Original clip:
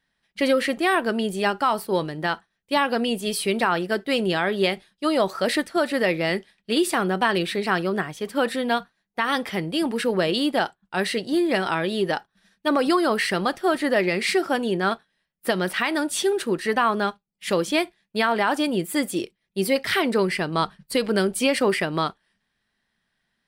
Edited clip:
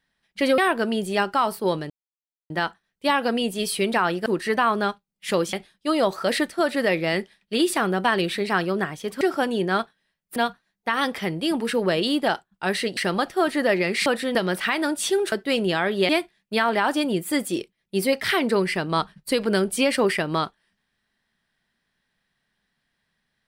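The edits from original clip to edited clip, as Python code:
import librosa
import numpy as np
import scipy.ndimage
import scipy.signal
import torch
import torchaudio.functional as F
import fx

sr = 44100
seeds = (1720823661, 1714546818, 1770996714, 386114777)

y = fx.edit(x, sr, fx.cut(start_s=0.58, length_s=0.27),
    fx.insert_silence(at_s=2.17, length_s=0.6),
    fx.swap(start_s=3.93, length_s=0.77, other_s=16.45, other_length_s=1.27),
    fx.swap(start_s=8.38, length_s=0.29, other_s=14.33, other_length_s=1.15),
    fx.cut(start_s=11.28, length_s=1.96), tone=tone)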